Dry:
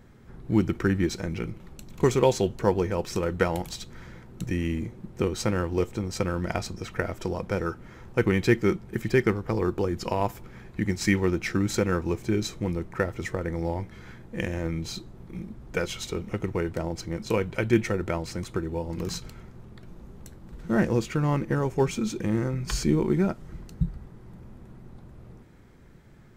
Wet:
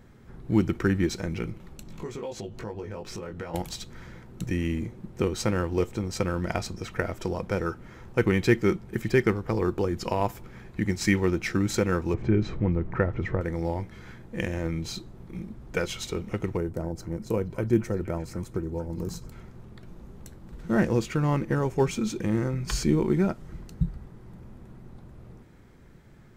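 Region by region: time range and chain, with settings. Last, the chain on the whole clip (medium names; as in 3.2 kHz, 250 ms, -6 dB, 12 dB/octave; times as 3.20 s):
1.83–3.54 s: treble shelf 7.8 kHz -8.5 dB + doubling 19 ms -2.5 dB + compression 4:1, threshold -35 dBFS
12.14–13.41 s: low-pass 2.2 kHz + bass shelf 170 Hz +7.5 dB + upward compressor, threshold -25 dBFS
16.57–19.32 s: peaking EQ 2.7 kHz -14 dB 2.5 oct + repeats whose band climbs or falls 234 ms, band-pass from 1.4 kHz, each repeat 0.7 oct, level -8 dB
whole clip: none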